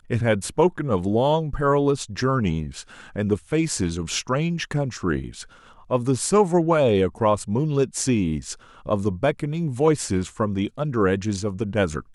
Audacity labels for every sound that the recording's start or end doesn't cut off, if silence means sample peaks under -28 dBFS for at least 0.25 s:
3.160000	5.420000	sound
5.910000	8.530000	sound